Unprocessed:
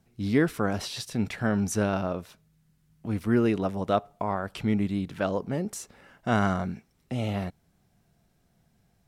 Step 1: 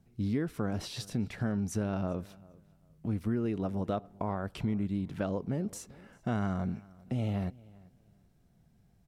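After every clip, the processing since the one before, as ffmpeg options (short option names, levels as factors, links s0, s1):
-filter_complex "[0:a]lowshelf=f=430:g=9,acompressor=threshold=0.0708:ratio=4,asplit=2[s0][s1];[s1]adelay=394,lowpass=f=5000:p=1,volume=0.0708,asplit=2[s2][s3];[s3]adelay=394,lowpass=f=5000:p=1,volume=0.24[s4];[s0][s2][s4]amix=inputs=3:normalize=0,volume=0.501"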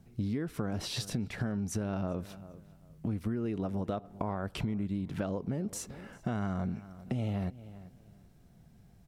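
-af "acompressor=threshold=0.0126:ratio=4,volume=2.11"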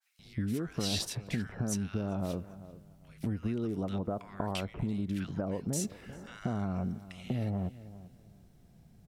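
-filter_complex "[0:a]acrossover=split=1400[s0][s1];[s0]adelay=190[s2];[s2][s1]amix=inputs=2:normalize=0,adynamicequalizer=threshold=0.00282:dfrequency=1900:dqfactor=0.7:tfrequency=1900:tqfactor=0.7:attack=5:release=100:ratio=0.375:range=2:mode=boostabove:tftype=highshelf"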